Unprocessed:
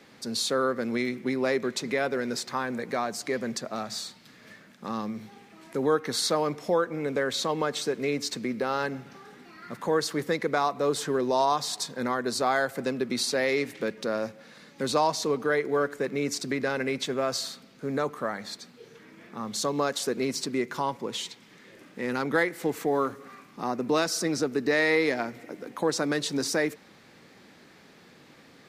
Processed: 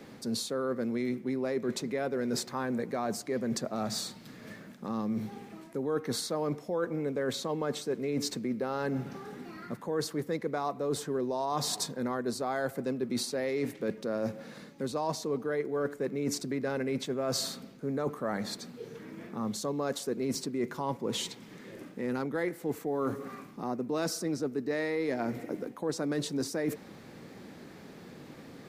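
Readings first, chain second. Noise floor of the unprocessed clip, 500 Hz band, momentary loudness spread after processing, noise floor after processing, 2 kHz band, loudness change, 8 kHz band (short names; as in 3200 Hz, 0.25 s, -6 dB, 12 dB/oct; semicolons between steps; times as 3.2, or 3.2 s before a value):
-54 dBFS, -5.0 dB, 13 LU, -50 dBFS, -10.5 dB, -5.0 dB, -4.5 dB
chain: tilt shelf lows +6 dB; reverse; compressor 6:1, threshold -32 dBFS, peak gain reduction 15 dB; reverse; high shelf 8100 Hz +9.5 dB; gain +2.5 dB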